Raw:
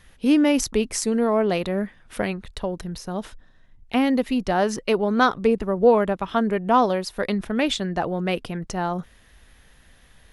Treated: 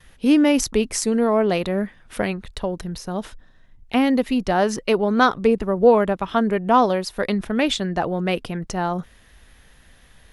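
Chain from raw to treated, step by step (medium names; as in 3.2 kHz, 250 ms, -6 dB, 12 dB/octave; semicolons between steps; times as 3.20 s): gate with hold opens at -46 dBFS; trim +2 dB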